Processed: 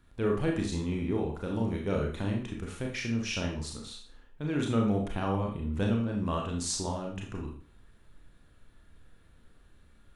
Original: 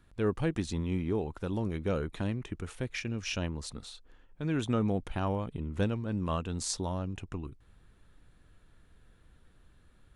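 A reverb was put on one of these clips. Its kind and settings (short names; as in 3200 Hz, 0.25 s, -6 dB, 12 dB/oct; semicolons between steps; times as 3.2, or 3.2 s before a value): Schroeder reverb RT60 0.43 s, combs from 27 ms, DRR 0 dB; gain -1 dB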